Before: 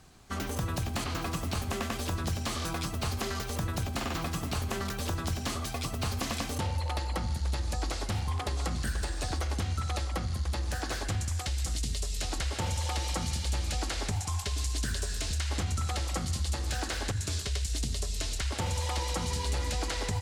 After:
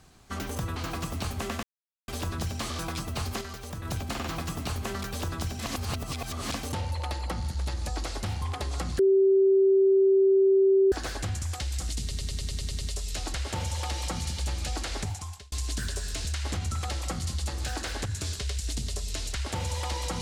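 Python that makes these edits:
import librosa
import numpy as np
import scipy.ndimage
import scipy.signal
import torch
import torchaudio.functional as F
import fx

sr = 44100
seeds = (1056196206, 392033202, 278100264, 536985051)

y = fx.edit(x, sr, fx.cut(start_s=0.76, length_s=0.31),
    fx.insert_silence(at_s=1.94, length_s=0.45),
    fx.clip_gain(start_s=3.27, length_s=0.44, db=-5.5),
    fx.reverse_span(start_s=5.45, length_s=0.93),
    fx.bleep(start_s=8.85, length_s=1.93, hz=387.0, db=-17.0),
    fx.stutter(start_s=11.87, slice_s=0.1, count=9),
    fx.fade_out_span(start_s=14.08, length_s=0.5), tone=tone)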